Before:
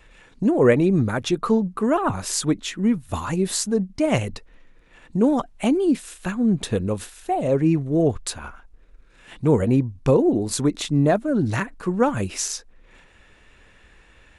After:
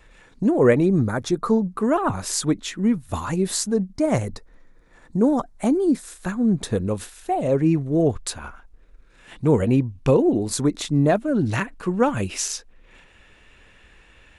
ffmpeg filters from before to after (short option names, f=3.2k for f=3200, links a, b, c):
-af "asetnsamples=n=441:p=0,asendcmd='0.86 equalizer g -13.5;1.72 equalizer g -3;3.93 equalizer g -14;6.03 equalizer g -8;6.84 equalizer g -1.5;9.54 equalizer g 4.5;10.49 equalizer g -4;11.09 equalizer g 3.5',equalizer=f=2.8k:t=o:w=0.54:g=-4"